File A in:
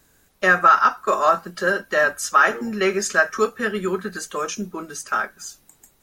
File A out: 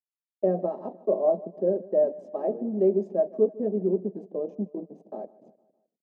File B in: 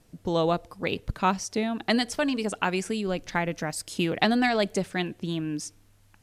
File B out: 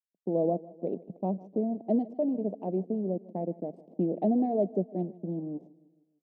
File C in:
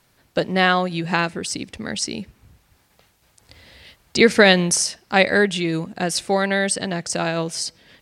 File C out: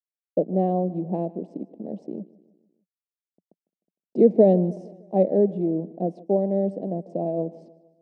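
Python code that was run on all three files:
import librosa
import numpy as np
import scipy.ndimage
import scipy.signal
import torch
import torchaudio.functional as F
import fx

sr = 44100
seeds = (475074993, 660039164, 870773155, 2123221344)

y = fx.add_hum(x, sr, base_hz=60, snr_db=31)
y = fx.backlash(y, sr, play_db=-26.5)
y = scipy.signal.sosfilt(scipy.signal.ellip(3, 1.0, 40, [180.0, 660.0], 'bandpass', fs=sr, output='sos'), y)
y = fx.echo_feedback(y, sr, ms=153, feedback_pct=51, wet_db=-20.5)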